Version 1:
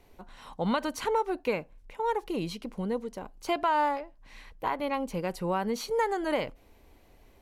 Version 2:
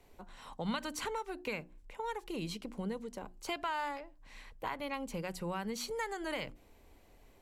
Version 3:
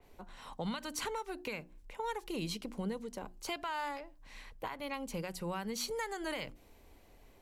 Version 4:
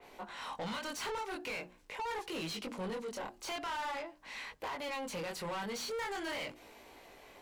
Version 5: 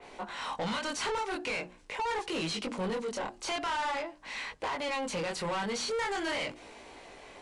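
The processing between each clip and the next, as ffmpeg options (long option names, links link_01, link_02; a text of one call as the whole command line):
ffmpeg -i in.wav -filter_complex "[0:a]equalizer=frequency=7600:width=5:gain=5.5,bandreject=frequency=60:width_type=h:width=6,bandreject=frequency=120:width_type=h:width=6,bandreject=frequency=180:width_type=h:width=6,bandreject=frequency=240:width_type=h:width=6,bandreject=frequency=300:width_type=h:width=6,bandreject=frequency=360:width_type=h:width=6,acrossover=split=200|1400[link_01][link_02][link_03];[link_02]acompressor=threshold=-36dB:ratio=6[link_04];[link_01][link_04][link_03]amix=inputs=3:normalize=0,volume=-3dB" out.wav
ffmpeg -i in.wav -af "equalizer=frequency=7600:width_type=o:width=0.28:gain=-2.5,alimiter=level_in=5dB:limit=-24dB:level=0:latency=1:release=332,volume=-5dB,adynamicequalizer=threshold=0.002:dfrequency=3600:dqfactor=0.7:tfrequency=3600:tqfactor=0.7:attack=5:release=100:ratio=0.375:range=2:mode=boostabove:tftype=highshelf,volume=1dB" out.wav
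ffmpeg -i in.wav -filter_complex "[0:a]flanger=delay=18.5:depth=6.6:speed=0.44,asplit=2[link_01][link_02];[link_02]highpass=frequency=720:poles=1,volume=25dB,asoftclip=type=tanh:threshold=-28dB[link_03];[link_01][link_03]amix=inputs=2:normalize=0,lowpass=frequency=4100:poles=1,volume=-6dB,volume=-3.5dB" out.wav
ffmpeg -i in.wav -af "aresample=22050,aresample=44100,volume=6dB" out.wav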